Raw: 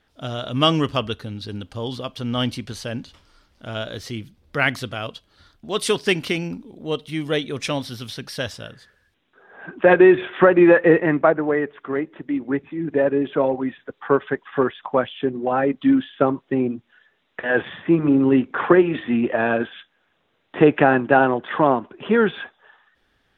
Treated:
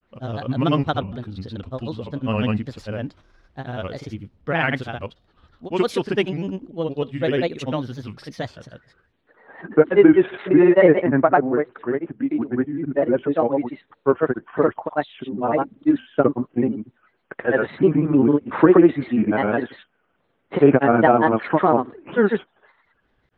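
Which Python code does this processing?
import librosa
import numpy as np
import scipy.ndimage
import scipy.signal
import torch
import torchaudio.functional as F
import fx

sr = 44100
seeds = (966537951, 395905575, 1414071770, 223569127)

y = fx.lowpass(x, sr, hz=1200.0, slope=6)
y = fx.granulator(y, sr, seeds[0], grain_ms=100.0, per_s=20.0, spray_ms=100.0, spread_st=3)
y = F.gain(torch.from_numpy(y), 2.5).numpy()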